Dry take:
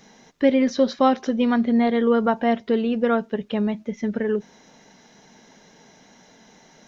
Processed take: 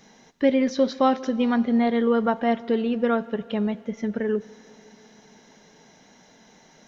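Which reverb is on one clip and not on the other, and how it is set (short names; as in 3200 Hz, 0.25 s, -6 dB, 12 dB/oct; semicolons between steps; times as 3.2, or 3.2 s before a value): plate-style reverb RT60 3.2 s, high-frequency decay 0.85×, DRR 17.5 dB; gain -2 dB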